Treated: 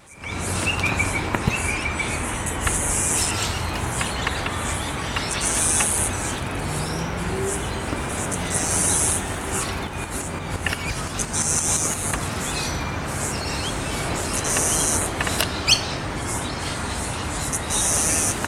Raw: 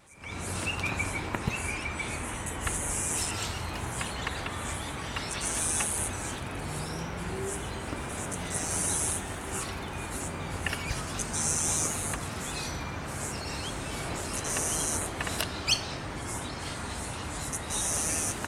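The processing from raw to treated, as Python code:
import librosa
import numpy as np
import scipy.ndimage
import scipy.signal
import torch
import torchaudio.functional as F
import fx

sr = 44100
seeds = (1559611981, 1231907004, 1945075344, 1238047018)

y = fx.tremolo_shape(x, sr, shape='saw_up', hz=5.8, depth_pct=50, at=(9.87, 12.13))
y = y * librosa.db_to_amplitude(9.0)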